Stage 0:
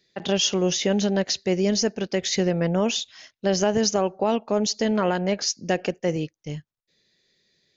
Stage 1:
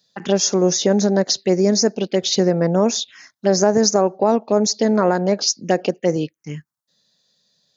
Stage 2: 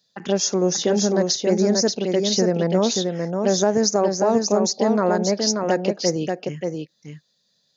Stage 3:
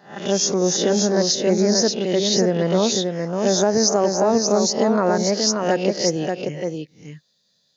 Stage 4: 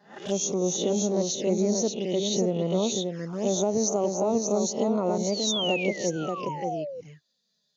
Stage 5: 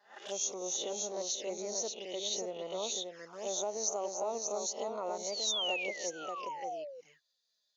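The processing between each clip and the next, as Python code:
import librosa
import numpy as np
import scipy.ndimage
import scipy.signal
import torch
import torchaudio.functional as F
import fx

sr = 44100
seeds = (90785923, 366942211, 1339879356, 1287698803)

y1 = scipy.signal.sosfilt(scipy.signal.butter(2, 170.0, 'highpass', fs=sr, output='sos'), x)
y1 = fx.env_phaser(y1, sr, low_hz=360.0, high_hz=3000.0, full_db=-20.0)
y1 = y1 * 10.0 ** (7.0 / 20.0)
y2 = y1 + 10.0 ** (-4.5 / 20.0) * np.pad(y1, (int(583 * sr / 1000.0), 0))[:len(y1)]
y2 = y2 * 10.0 ** (-3.5 / 20.0)
y3 = fx.spec_swells(y2, sr, rise_s=0.4)
y4 = fx.spec_paint(y3, sr, seeds[0], shape='fall', start_s=5.29, length_s=1.72, low_hz=480.0, high_hz=4900.0, level_db=-23.0)
y4 = fx.env_flanger(y4, sr, rest_ms=5.0, full_db=-17.5)
y4 = y4 * 10.0 ** (-6.0 / 20.0)
y5 = scipy.signal.sosfilt(scipy.signal.butter(2, 670.0, 'highpass', fs=sr, output='sos'), y4)
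y5 = y5 * 10.0 ** (-5.0 / 20.0)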